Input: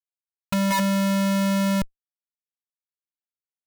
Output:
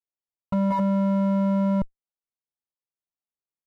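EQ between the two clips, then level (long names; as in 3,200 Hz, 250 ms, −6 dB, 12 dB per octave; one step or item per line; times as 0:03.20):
Savitzky-Golay smoothing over 65 samples
0.0 dB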